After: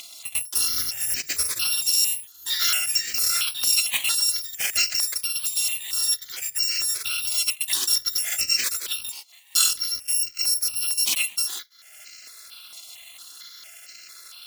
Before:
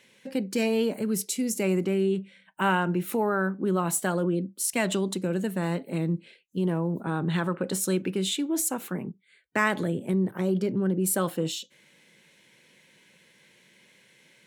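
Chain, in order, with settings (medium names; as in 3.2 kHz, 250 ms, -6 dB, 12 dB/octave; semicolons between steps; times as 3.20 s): bit-reversed sample order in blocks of 256 samples; ever faster or slower copies 519 ms, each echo +5 st, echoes 3, each echo -6 dB; frequency weighting D; upward compressor, threshold -28 dBFS; transient shaper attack +3 dB, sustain -3 dB; stepped phaser 4.4 Hz 450–3500 Hz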